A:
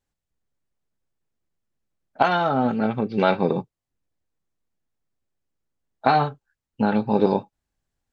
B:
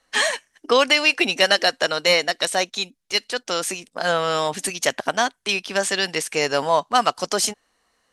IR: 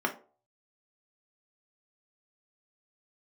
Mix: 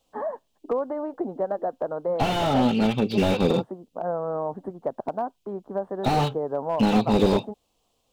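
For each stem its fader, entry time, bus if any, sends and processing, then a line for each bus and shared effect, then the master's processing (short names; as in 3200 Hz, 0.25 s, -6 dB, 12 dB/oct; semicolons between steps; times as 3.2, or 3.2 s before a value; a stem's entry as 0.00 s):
+2.0 dB, 0.00 s, no send, resonant high shelf 2200 Hz +10 dB, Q 3
-1.5 dB, 0.00 s, no send, inverse Chebyshev low-pass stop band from 2400 Hz, stop band 50 dB; compressor 2.5:1, threshold -23 dBFS, peak gain reduction 7 dB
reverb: off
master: slew limiter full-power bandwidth 82 Hz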